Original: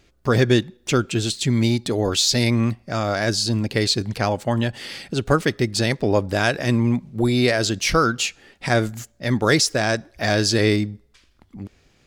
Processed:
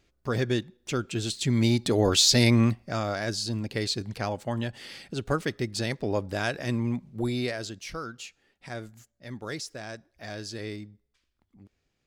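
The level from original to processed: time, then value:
0:00.94 −10 dB
0:01.97 −1 dB
0:02.61 −1 dB
0:03.24 −9 dB
0:07.28 −9 dB
0:07.88 −18.5 dB

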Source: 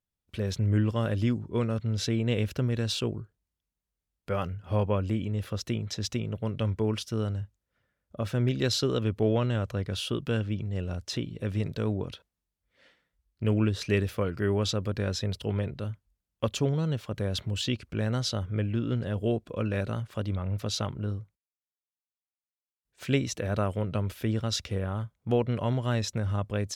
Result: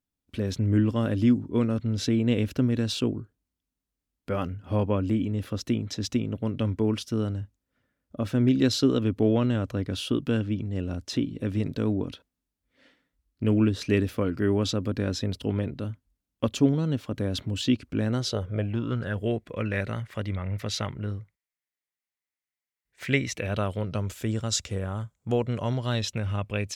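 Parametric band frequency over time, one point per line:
parametric band +12.5 dB 0.47 octaves
0:18.08 270 Hz
0:19.25 2,000 Hz
0:23.29 2,000 Hz
0:24.14 7,400 Hz
0:25.53 7,400 Hz
0:26.19 2,500 Hz

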